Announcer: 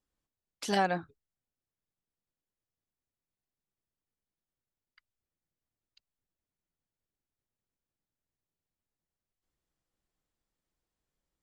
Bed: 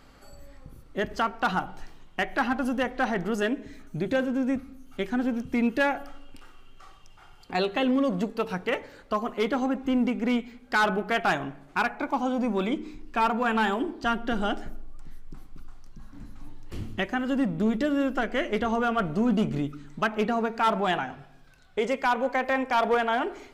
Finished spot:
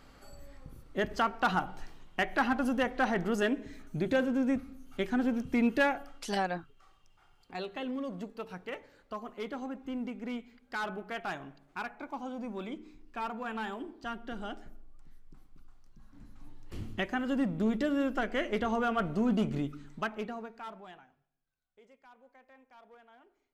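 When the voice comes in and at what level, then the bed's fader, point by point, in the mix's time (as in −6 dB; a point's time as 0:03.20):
5.60 s, −3.5 dB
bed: 0:05.83 −2.5 dB
0:06.34 −12.5 dB
0:15.83 −12.5 dB
0:16.89 −4.5 dB
0:19.86 −4.5 dB
0:21.34 −33.5 dB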